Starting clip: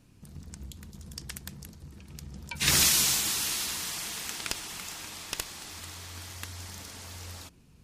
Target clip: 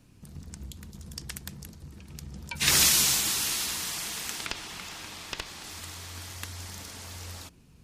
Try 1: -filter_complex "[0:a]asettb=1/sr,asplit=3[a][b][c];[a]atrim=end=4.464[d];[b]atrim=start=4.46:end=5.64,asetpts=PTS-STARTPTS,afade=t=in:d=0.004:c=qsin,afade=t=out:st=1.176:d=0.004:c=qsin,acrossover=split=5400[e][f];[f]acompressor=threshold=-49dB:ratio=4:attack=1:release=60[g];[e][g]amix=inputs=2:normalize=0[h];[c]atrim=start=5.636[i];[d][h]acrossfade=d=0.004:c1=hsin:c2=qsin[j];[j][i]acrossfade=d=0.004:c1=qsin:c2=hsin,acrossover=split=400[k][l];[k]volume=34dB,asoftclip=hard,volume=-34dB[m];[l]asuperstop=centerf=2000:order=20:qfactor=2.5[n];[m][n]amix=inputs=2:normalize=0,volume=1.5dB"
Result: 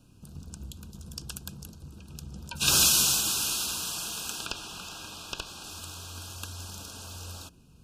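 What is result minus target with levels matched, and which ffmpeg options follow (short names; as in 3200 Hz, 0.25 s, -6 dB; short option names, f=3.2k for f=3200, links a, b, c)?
2000 Hz band -4.0 dB
-filter_complex "[0:a]asettb=1/sr,asplit=3[a][b][c];[a]atrim=end=4.464[d];[b]atrim=start=4.46:end=5.64,asetpts=PTS-STARTPTS,afade=t=in:d=0.004:c=qsin,afade=t=out:st=1.176:d=0.004:c=qsin,acrossover=split=5400[e][f];[f]acompressor=threshold=-49dB:ratio=4:attack=1:release=60[g];[e][g]amix=inputs=2:normalize=0[h];[c]atrim=start=5.636[i];[d][h]acrossfade=d=0.004:c1=hsin:c2=qsin[j];[j][i]acrossfade=d=0.004:c1=qsin:c2=hsin,acrossover=split=400[k][l];[k]volume=34dB,asoftclip=hard,volume=-34dB[m];[m][l]amix=inputs=2:normalize=0,volume=1.5dB"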